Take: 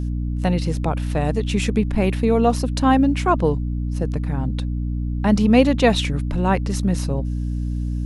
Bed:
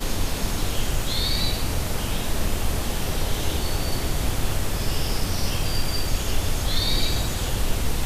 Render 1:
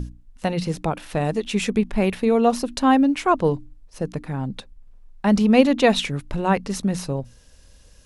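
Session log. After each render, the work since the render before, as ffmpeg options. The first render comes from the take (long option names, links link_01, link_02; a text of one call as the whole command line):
ffmpeg -i in.wav -af "bandreject=frequency=60:width_type=h:width=6,bandreject=frequency=120:width_type=h:width=6,bandreject=frequency=180:width_type=h:width=6,bandreject=frequency=240:width_type=h:width=6,bandreject=frequency=300:width_type=h:width=6" out.wav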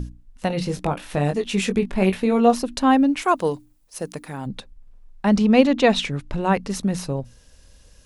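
ffmpeg -i in.wav -filter_complex "[0:a]asettb=1/sr,asplit=3[link_01][link_02][link_03];[link_01]atrim=end=0.484[link_04];[link_02]atrim=start=0.48:end=2.55,asetpts=PTS-STARTPTS,afade=type=in:duration=0.004:curve=qsin,afade=type=out:start_time=2.066:duration=0.004:curve=qsin,asplit=2[link_05][link_06];[link_06]adelay=21,volume=-6dB[link_07];[link_05][link_07]amix=inputs=2:normalize=0,atrim=end_sample=91287[link_08];[link_03]atrim=start=2.546[link_09];[link_04][link_08]acrossfade=duration=0.004:curve1=hsin:curve2=qsin[link_10];[link_10][link_09]acrossfade=duration=0.004:curve1=qsin:curve2=hsin,asplit=3[link_11][link_12][link_13];[link_11]afade=type=out:start_time=3.21:duration=0.02[link_14];[link_12]aemphasis=mode=production:type=bsi,afade=type=in:start_time=3.21:duration=0.02,afade=type=out:start_time=4.45:duration=0.02[link_15];[link_13]afade=type=in:start_time=4.45:duration=0.02[link_16];[link_14][link_15][link_16]amix=inputs=3:normalize=0,asettb=1/sr,asplit=3[link_17][link_18][link_19];[link_17]atrim=end=5.294[link_20];[link_18]atrim=start=5.29:end=6.41,asetpts=PTS-STARTPTS,afade=type=in:duration=0.004:curve=qsin,afade=type=out:start_time=1.116:duration=0.004:curve=qsin,lowpass=7900[link_21];[link_19]atrim=start=6.406[link_22];[link_20][link_21]acrossfade=duration=0.004:curve1=hsin:curve2=qsin[link_23];[link_23][link_22]acrossfade=duration=0.004:curve1=qsin:curve2=hsin" out.wav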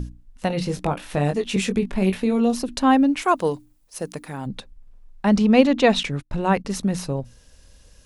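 ffmpeg -i in.wav -filter_complex "[0:a]asettb=1/sr,asplit=3[link_01][link_02][link_03];[link_01]atrim=end=1.564[link_04];[link_02]atrim=start=1.56:end=2.69,asetpts=PTS-STARTPTS,afade=type=in:duration=0.004:curve=qsin,afade=type=out:start_time=1.126:duration=0.004:curve=qsin,acrossover=split=410|3000[link_05][link_06][link_07];[link_06]acompressor=threshold=-29dB:ratio=6:attack=3.2:release=140:knee=2.83:detection=peak[link_08];[link_05][link_08][link_07]amix=inputs=3:normalize=0[link_09];[link_03]atrim=start=2.686[link_10];[link_04][link_09]acrossfade=duration=0.004:curve1=hsin:curve2=qsin[link_11];[link_11][link_10]acrossfade=duration=0.004:curve1=qsin:curve2=hsin,asettb=1/sr,asplit=3[link_12][link_13][link_14];[link_12]atrim=end=6.034[link_15];[link_13]atrim=start=6.03:end=6.65,asetpts=PTS-STARTPTS,afade=type=in:duration=0.004:curve=qsin,afade=type=out:start_time=0.616:duration=0.004:curve=qsin,agate=range=-27dB:threshold=-34dB:ratio=16:release=100:detection=peak[link_16];[link_14]atrim=start=6.646[link_17];[link_15][link_16]acrossfade=duration=0.004:curve1=hsin:curve2=qsin[link_18];[link_18][link_17]acrossfade=duration=0.004:curve1=qsin:curve2=hsin" out.wav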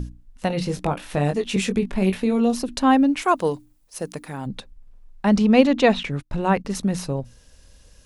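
ffmpeg -i in.wav -filter_complex "[0:a]asettb=1/sr,asplit=3[link_01][link_02][link_03];[link_01]atrim=end=5.894[link_04];[link_02]atrim=start=5.89:end=6.75,asetpts=PTS-STARTPTS,afade=type=in:duration=0.004:curve=qsin,afade=type=out:start_time=0.856:duration=0.004:curve=qsin,acrossover=split=3200[link_05][link_06];[link_06]acompressor=threshold=-41dB:ratio=4:attack=1:release=60[link_07];[link_05][link_07]amix=inputs=2:normalize=0[link_08];[link_03]atrim=start=6.746[link_09];[link_04][link_08]acrossfade=duration=0.004:curve1=hsin:curve2=qsin[link_10];[link_10][link_09]acrossfade=duration=0.004:curve1=qsin:curve2=hsin" out.wav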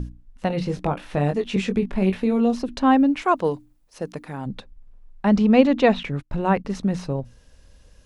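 ffmpeg -i in.wav -filter_complex "[0:a]acrossover=split=7500[link_01][link_02];[link_02]acompressor=threshold=-52dB:ratio=4:attack=1:release=60[link_03];[link_01][link_03]amix=inputs=2:normalize=0,highshelf=frequency=3900:gain=-9" out.wav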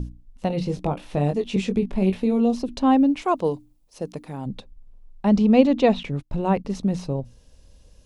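ffmpeg -i in.wav -af "equalizer=frequency=1600:width=1.4:gain=-9.5" out.wav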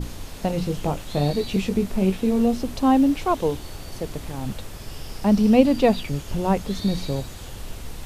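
ffmpeg -i in.wav -i bed.wav -filter_complex "[1:a]volume=-11.5dB[link_01];[0:a][link_01]amix=inputs=2:normalize=0" out.wav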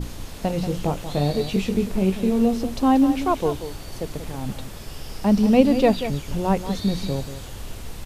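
ffmpeg -i in.wav -af "aecho=1:1:185:0.282" out.wav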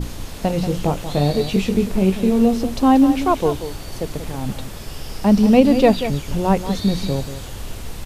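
ffmpeg -i in.wav -af "volume=4dB,alimiter=limit=-1dB:level=0:latency=1" out.wav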